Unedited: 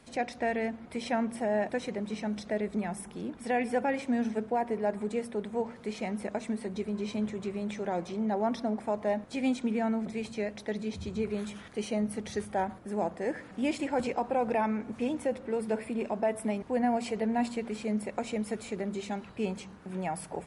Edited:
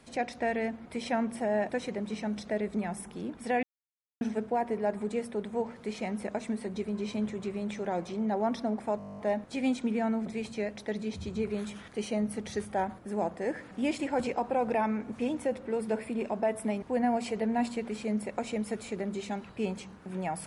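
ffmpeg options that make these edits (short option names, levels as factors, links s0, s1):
-filter_complex "[0:a]asplit=13[s0][s1][s2][s3][s4][s5][s6][s7][s8][s9][s10][s11][s12];[s0]atrim=end=3.63,asetpts=PTS-STARTPTS,afade=t=out:st=3.626:d=0.004:c=hsin[s13];[s1]atrim=start=3.63:end=4.21,asetpts=PTS-STARTPTS,volume=0[s14];[s2]atrim=start=4.21:end=9.002,asetpts=PTS-STARTPTS,afade=t=in:d=0.004:c=hsin[s15];[s3]atrim=start=8.978:end=9.002[s16];[s4]atrim=start=8.978:end=9.002[s17];[s5]atrim=start=8.978:end=9.002[s18];[s6]atrim=start=8.978:end=9.002[s19];[s7]atrim=start=8.978:end=9.002[s20];[s8]atrim=start=8.978:end=9.002[s21];[s9]atrim=start=8.978:end=9.002[s22];[s10]atrim=start=8.978:end=9.002[s23];[s11]atrim=start=8.978:end=9.002[s24];[s12]atrim=start=8.978[s25];[s13][s14][s15]concat=n=3:v=0:a=1[s26];[s26][s16]acrossfade=d=0.004:c1=hsin:c2=hsin[s27];[s27][s17]acrossfade=d=0.004:c1=hsin:c2=hsin[s28];[s28][s18]acrossfade=d=0.004:c1=hsin:c2=hsin[s29];[s29][s19]acrossfade=d=0.004:c1=hsin:c2=hsin[s30];[s30][s20]acrossfade=d=0.004:c1=hsin:c2=hsin[s31];[s31][s21]acrossfade=d=0.004:c1=hsin:c2=hsin[s32];[s32][s22]acrossfade=d=0.004:c1=hsin:c2=hsin[s33];[s33][s23]acrossfade=d=0.004:c1=hsin:c2=hsin[s34];[s34][s24]acrossfade=d=0.004:c1=hsin:c2=hsin[s35];[s35][s25]acrossfade=d=0.004:c1=hsin:c2=hsin"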